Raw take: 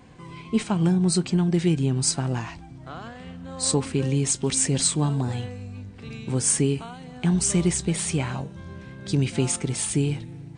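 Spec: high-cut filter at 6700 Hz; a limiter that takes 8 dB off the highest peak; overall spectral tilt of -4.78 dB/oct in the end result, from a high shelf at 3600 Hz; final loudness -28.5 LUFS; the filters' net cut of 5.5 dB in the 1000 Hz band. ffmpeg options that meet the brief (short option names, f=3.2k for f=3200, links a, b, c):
-af "lowpass=6.7k,equalizer=f=1k:t=o:g=-7.5,highshelf=f=3.6k:g=3.5,volume=-2dB,alimiter=limit=-19dB:level=0:latency=1"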